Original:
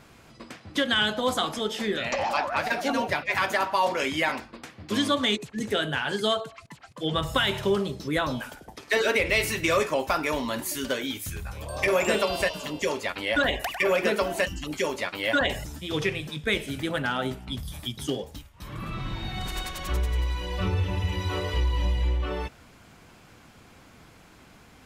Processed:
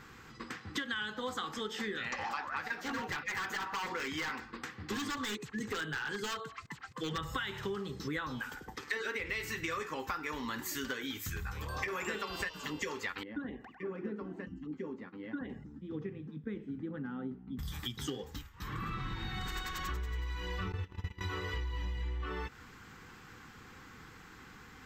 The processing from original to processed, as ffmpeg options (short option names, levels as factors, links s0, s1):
-filter_complex "[0:a]asettb=1/sr,asplit=3[s0][s1][s2];[s0]atrim=end=2.804[s3];[s1]atrim=start=2.8:end=7.18,asetpts=PTS-STARTPTS,afade=t=in:d=0.004:c=qsin,afade=t=out:st=4.376:d=0.004:c=qsin,aeval=exprs='0.0794*(abs(mod(val(0)/0.0794+3,4)-2)-1)':c=same[s4];[s2]atrim=start=7.176[s5];[s3][s4]acrossfade=d=0.004:c1=hsin:c2=qsin[s6];[s6][s5]acrossfade=d=0.004:c1=qsin:c2=hsin,asettb=1/sr,asplit=3[s7][s8][s9];[s7]atrim=end=13.234[s10];[s8]atrim=start=13.23:end=17.59,asetpts=PTS-STARTPTS,afade=t=in:d=0.004:c=qsin,afade=t=out:st=4.356:d=0.004:c=qsin,bandpass=f=230:t=q:w=2.2[s11];[s9]atrim=start=17.586[s12];[s10][s11]acrossfade=d=0.004:c1=hsin:c2=qsin[s13];[s13][s12]acrossfade=d=0.004:c1=qsin:c2=hsin,asettb=1/sr,asplit=3[s14][s15][s16];[s14]atrim=end=20.724[s17];[s15]atrim=start=20.72:end=21.21,asetpts=PTS-STARTPTS,afade=t=in:d=0.004:c=qsin,afade=t=out:st=0.486:d=0.004:c=qsin,agate=range=0.0708:threshold=0.0501:ratio=16:release=100:detection=peak[s18];[s16]atrim=start=21.206[s19];[s17][s18]acrossfade=d=0.004:c1=hsin:c2=qsin[s20];[s20][s19]acrossfade=d=0.004:c1=qsin:c2=hsin,superequalizer=8b=0.251:10b=1.78:11b=2:16b=0.251,acompressor=threshold=0.0224:ratio=6,volume=0.794"